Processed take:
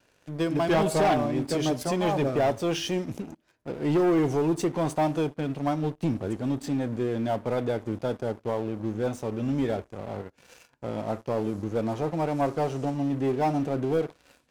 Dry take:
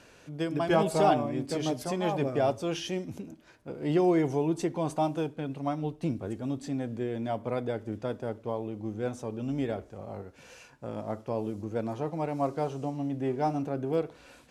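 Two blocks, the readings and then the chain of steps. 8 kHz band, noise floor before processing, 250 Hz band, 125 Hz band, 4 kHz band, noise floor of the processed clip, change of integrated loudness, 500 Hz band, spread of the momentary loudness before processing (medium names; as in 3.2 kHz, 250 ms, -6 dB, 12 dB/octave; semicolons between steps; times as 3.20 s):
+5.0 dB, -56 dBFS, +4.0 dB, +4.0 dB, +4.5 dB, -66 dBFS, +3.5 dB, +3.0 dB, 13 LU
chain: vibrato 0.92 Hz 20 cents; waveshaping leveller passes 3; trim -6 dB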